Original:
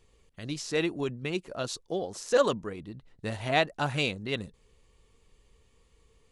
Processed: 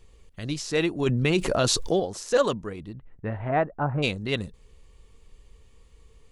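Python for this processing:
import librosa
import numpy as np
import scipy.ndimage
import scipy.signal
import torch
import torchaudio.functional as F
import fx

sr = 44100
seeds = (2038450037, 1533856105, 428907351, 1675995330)

y = fx.lowpass(x, sr, hz=fx.line((2.92, 2600.0), (4.02, 1200.0)), slope=24, at=(2.92, 4.02), fade=0.02)
y = fx.rider(y, sr, range_db=3, speed_s=0.5)
y = fx.low_shelf(y, sr, hz=77.0, db=9.0)
y = fx.env_flatten(y, sr, amount_pct=70, at=(1.06, 2.0))
y = F.gain(torch.from_numpy(y), 4.0).numpy()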